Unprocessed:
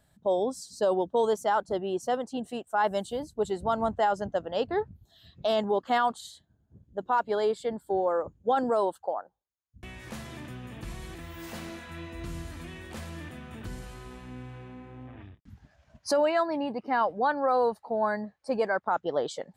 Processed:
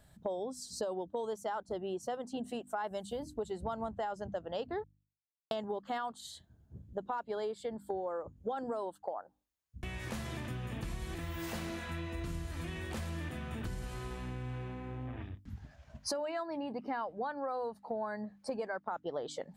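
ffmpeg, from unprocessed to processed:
-filter_complex "[0:a]asplit=3[a][b][c];[a]atrim=end=4.84,asetpts=PTS-STARTPTS,afade=t=out:st=4.836:d=0.004:c=hsin[d];[b]atrim=start=4.84:end=5.51,asetpts=PTS-STARTPTS,volume=0[e];[c]atrim=start=5.51,asetpts=PTS-STARTPTS,afade=t=in:d=0.004:c=hsin[f];[d][e][f]concat=n=3:v=0:a=1,lowshelf=f=120:g=6,bandreject=f=50:t=h:w=6,bandreject=f=100:t=h:w=6,bandreject=f=150:t=h:w=6,bandreject=f=200:t=h:w=6,bandreject=f=250:t=h:w=6,bandreject=f=300:t=h:w=6,acompressor=threshold=-38dB:ratio=6,volume=2.5dB"

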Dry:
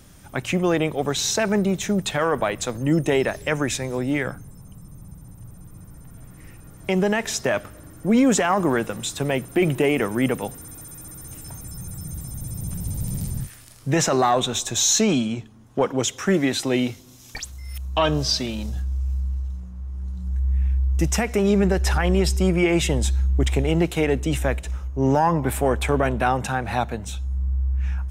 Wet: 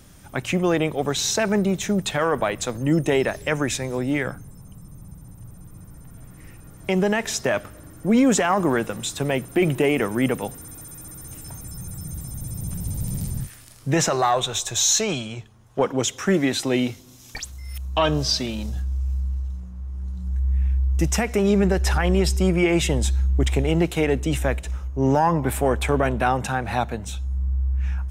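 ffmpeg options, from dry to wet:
-filter_complex "[0:a]asettb=1/sr,asplit=3[a][b][c];[a]atrim=end=14.104[d];[b]atrim=start=14.1:end=15.79,asetpts=PTS-STARTPTS,afade=t=in:d=0.004:c=qsin,afade=t=out:st=1.686:d=0.004:c=qsin,equalizer=f=250:t=o:w=0.77:g=-13[e];[c]atrim=start=15.786[f];[d][e]acrossfade=d=0.004:c1=hsin:c2=qsin[g];[g][f]acrossfade=d=0.004:c1=qsin:c2=hsin"

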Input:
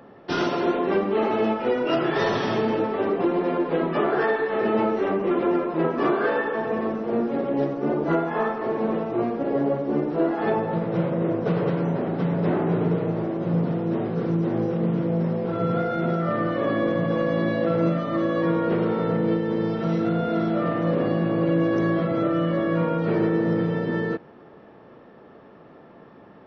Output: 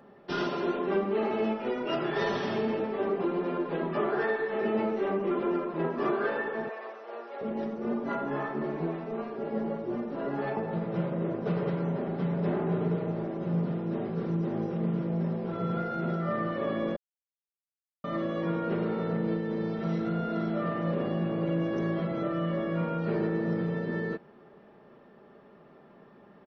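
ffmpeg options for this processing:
-filter_complex "[0:a]asettb=1/sr,asplit=3[a][b][c];[a]atrim=end=6.694[d];[b]atrim=start=6.69:end=10.57,asetpts=PTS-STARTPTS,afade=t=in:d=0.004:c=qsin,afade=t=out:st=3.876:d=0.004:c=qsin,acrossover=split=520[e][f];[e]adelay=720[g];[g][f]amix=inputs=2:normalize=0,atrim=end_sample=171108[h];[c]atrim=start=10.566[i];[d][h]acrossfade=d=0.004:c1=hsin:c2=qsin[j];[j][i]acrossfade=d=0.004:c1=qsin:c2=hsin,asplit=3[k][l][m];[k]atrim=end=16.96,asetpts=PTS-STARTPTS,afade=t=out:st=16.956:d=0.004:c=hsin[n];[l]atrim=start=16.96:end=18.04,asetpts=PTS-STARTPTS,volume=0[o];[m]atrim=start=18.04,asetpts=PTS-STARTPTS,afade=t=in:d=0.004:c=hsin[p];[n][o][p]concat=n=3:v=0:a=1,aecho=1:1:5:0.42,volume=-7.5dB"

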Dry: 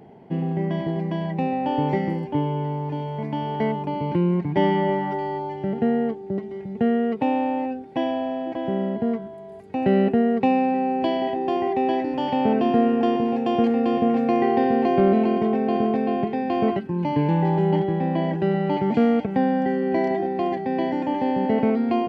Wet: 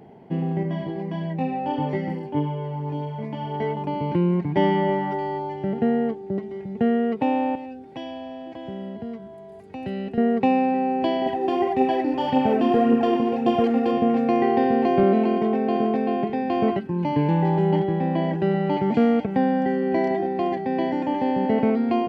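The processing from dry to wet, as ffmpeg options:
-filter_complex "[0:a]asettb=1/sr,asplit=3[a][b][c];[a]atrim=end=0.634[d];[b]atrim=start=0.63:end=3.77,asetpts=PTS-STARTPTS,afade=t=in:d=0.004:c=qsin,afade=t=out:st=3.136:d=0.004:c=qsin,flanger=delay=18.5:depth=2.2:speed=1.5[e];[c]atrim=start=3.766[f];[d][e]acrossfade=d=0.004:c1=hsin:c2=qsin[g];[g][f]acrossfade=d=0.004:c1=qsin:c2=hsin,asettb=1/sr,asplit=3[h][i][j];[h]atrim=end=7.554[k];[i]atrim=start=7.55:end=10.18,asetpts=PTS-STARTPTS,afade=t=in:d=0.004:c=qsin,afade=t=out:st=2.626:d=0.004:c=qsin,acrossover=split=120|3000[l][m][n];[m]acompressor=threshold=-40dB:ratio=2:attack=3.2:release=140:knee=2.83:detection=peak[o];[l][o][n]amix=inputs=3:normalize=0[p];[j]atrim=start=10.176[q];[k][p]acrossfade=d=0.004:c1=hsin:c2=qsin[r];[r][q]acrossfade=d=0.004:c1=qsin:c2=hsin,asettb=1/sr,asplit=3[s][t][u];[s]atrim=end=11.264[v];[t]atrim=start=11.26:end=13.92,asetpts=PTS-STARTPTS,afade=t=in:d=0.004:c=qsin,afade=t=out:st=2.656:d=0.004:c=qsin,aphaser=in_gain=1:out_gain=1:delay=3.8:decay=0.45:speed=1.8:type=triangular[w];[u]atrim=start=13.916[x];[v][w]acrossfade=d=0.004:c1=hsin:c2=qsin[y];[y][x]acrossfade=d=0.004:c1=qsin:c2=hsin,asettb=1/sr,asplit=3[z][aa][ab];[z]atrim=end=15.034[ac];[aa]atrim=start=15.03:end=16.3,asetpts=PTS-STARTPTS,afade=t=in:d=0.004:c=qsin,afade=t=out:st=1.266:d=0.004:c=qsin,highpass=150[ad];[ab]atrim=start=16.296[ae];[ac][ad]acrossfade=d=0.004:c1=hsin:c2=qsin[af];[af][ae]acrossfade=d=0.004:c1=qsin:c2=hsin"

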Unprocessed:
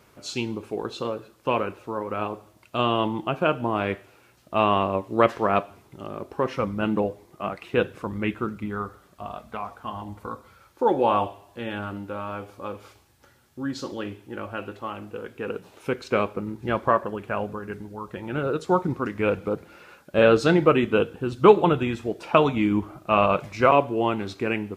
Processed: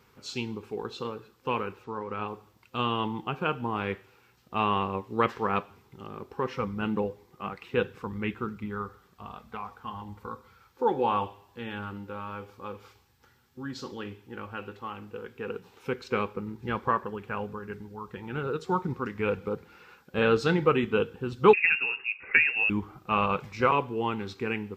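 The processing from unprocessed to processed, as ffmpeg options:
-filter_complex "[0:a]asettb=1/sr,asplit=3[a][b][c];[a]atrim=end=1.844[d];[b]atrim=start=1.84:end=2.28,asetpts=PTS-STARTPTS,afade=t=in:d=0.004:c=qsin,afade=t=out:st=0.436:d=0.004:c=qsin,lowpass=7k[e];[c]atrim=start=2.276[f];[d][e]acrossfade=d=0.004:c1=hsin:c2=qsin[g];[g][f]acrossfade=d=0.004:c1=qsin:c2=hsin,asettb=1/sr,asplit=3[h][i][j];[h]atrim=end=21.534[k];[i]atrim=start=21.53:end=22.7,asetpts=PTS-STARTPTS,afade=t=in:d=0.004:c=qsin,afade=t=out:st=1.166:d=0.004:c=qsin,lowpass=f=2.5k:t=q:w=0.5098,lowpass=f=2.5k:t=q:w=0.6013,lowpass=f=2.5k:t=q:w=0.9,lowpass=f=2.5k:t=q:w=2.563,afreqshift=-2900[l];[j]atrim=start=22.696[m];[k][l]acrossfade=d=0.004:c1=hsin:c2=qsin[n];[n][m]acrossfade=d=0.004:c1=qsin:c2=hsin,superequalizer=6b=0.562:8b=0.282:15b=0.708:16b=0.398,volume=-4dB"

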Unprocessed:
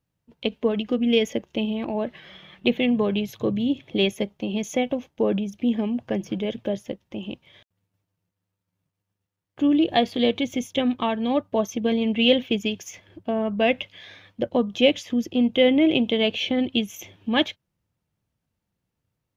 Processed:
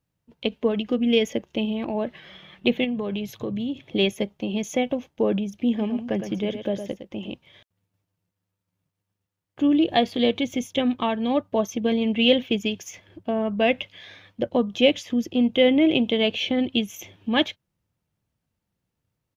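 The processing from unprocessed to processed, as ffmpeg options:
-filter_complex "[0:a]asettb=1/sr,asplit=3[a][b][c];[a]atrim=end=2.844[d];[b]atrim=start=2.84:end=3.82,asetpts=PTS-STARTPTS,afade=t=in:d=0.004:c=qsin,afade=t=out:st=0.976:d=0.004:c=qsin,acompressor=threshold=-25dB:ratio=4:attack=3.2:release=140:knee=1:detection=peak[e];[c]atrim=start=3.816[f];[d][e]acrossfade=d=0.004:c1=hsin:c2=qsin[g];[g][f]acrossfade=d=0.004:c1=qsin:c2=hsin,asplit=3[h][i][j];[h]afade=t=out:st=5.78:d=0.02[k];[i]aecho=1:1:111:0.355,afade=t=in:st=5.78:d=0.02,afade=t=out:st=7.32:d=0.02[l];[j]afade=t=in:st=7.32:d=0.02[m];[k][l][m]amix=inputs=3:normalize=0"

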